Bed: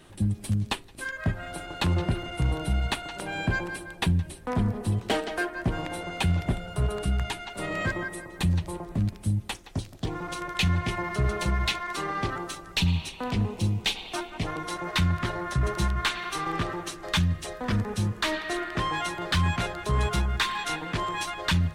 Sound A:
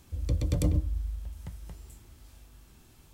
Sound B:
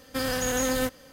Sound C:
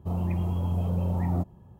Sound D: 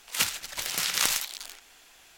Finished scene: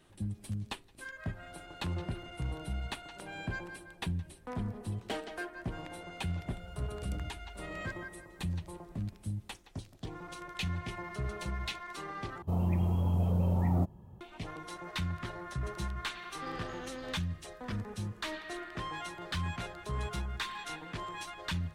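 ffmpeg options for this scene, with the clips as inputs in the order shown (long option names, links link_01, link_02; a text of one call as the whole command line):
ffmpeg -i bed.wav -i cue0.wav -i cue1.wav -i cue2.wav -filter_complex "[0:a]volume=-11dB[link_01];[2:a]lowpass=frequency=4400:width=0.5412,lowpass=frequency=4400:width=1.3066[link_02];[link_01]asplit=2[link_03][link_04];[link_03]atrim=end=12.424[link_05];[3:a]atrim=end=1.79,asetpts=PTS-STARTPTS,volume=-1.5dB[link_06];[link_04]atrim=start=14.206[link_07];[1:a]atrim=end=3.13,asetpts=PTS-STARTPTS,volume=-16.5dB,afade=type=in:duration=0.004:curve=hsin,afade=type=out:start_time=3.126:duration=0.004:curve=hsin,adelay=286650S[link_08];[link_02]atrim=end=1.12,asetpts=PTS-STARTPTS,volume=-16.5dB,afade=type=in:duration=0.004:curve=hsin,afade=type=out:start_time=1.116:duration=0.004:curve=hsin,adelay=16270[link_09];[link_05][link_06]acrossfade=duration=0.004:curve1=hsin:curve2=hsin[link_10];[link_10][link_07]acrossfade=duration=0.004:curve1=hsin:curve2=hsin[link_11];[link_11][link_08][link_09]amix=inputs=3:normalize=0" out.wav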